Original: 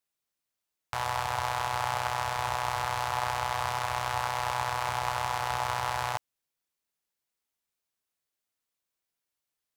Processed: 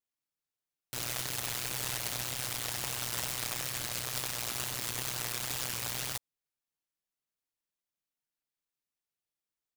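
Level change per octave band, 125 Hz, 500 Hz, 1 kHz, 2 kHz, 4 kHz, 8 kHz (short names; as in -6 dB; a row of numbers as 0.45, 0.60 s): -4.5, -8.5, -16.5, -6.5, +1.0, +7.0 dB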